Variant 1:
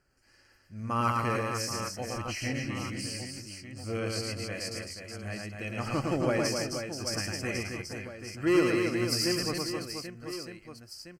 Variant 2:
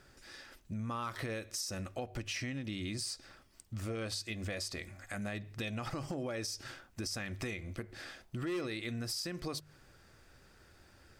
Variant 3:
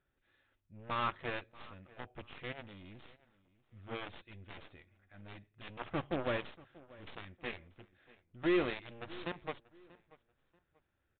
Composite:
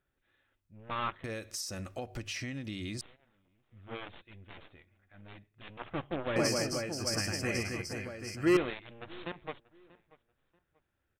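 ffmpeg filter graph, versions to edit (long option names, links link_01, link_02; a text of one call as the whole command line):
ffmpeg -i take0.wav -i take1.wav -i take2.wav -filter_complex "[2:a]asplit=3[link_01][link_02][link_03];[link_01]atrim=end=1.242[link_04];[1:a]atrim=start=1.238:end=3.012[link_05];[link_02]atrim=start=3.008:end=6.362[link_06];[0:a]atrim=start=6.358:end=8.572[link_07];[link_03]atrim=start=8.568[link_08];[link_04][link_05]acrossfade=duration=0.004:curve1=hsin:curve2=hsin[link_09];[link_09][link_06]acrossfade=duration=0.004:curve1=hsin:curve2=hsin[link_10];[link_10][link_07]acrossfade=duration=0.004:curve1=hsin:curve2=hsin[link_11];[link_11][link_08]acrossfade=duration=0.004:curve1=hsin:curve2=hsin" out.wav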